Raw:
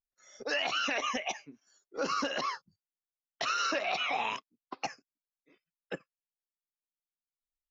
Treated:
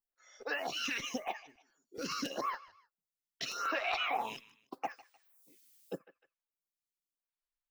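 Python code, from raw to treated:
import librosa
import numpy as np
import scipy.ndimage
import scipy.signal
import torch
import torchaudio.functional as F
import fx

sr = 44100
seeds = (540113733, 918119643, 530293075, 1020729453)

p1 = x + fx.echo_feedback(x, sr, ms=153, feedback_pct=34, wet_db=-21.5, dry=0)
p2 = fx.dmg_noise_colour(p1, sr, seeds[0], colour='blue', level_db=-65.0, at=(4.87, 5.94), fade=0.02)
p3 = fx.notch(p2, sr, hz=590.0, q=12.0)
p4 = fx.mod_noise(p3, sr, seeds[1], snr_db=28)
p5 = fx.buffer_crackle(p4, sr, first_s=0.71, period_s=0.14, block=256, kind='repeat')
y = fx.stagger_phaser(p5, sr, hz=0.84)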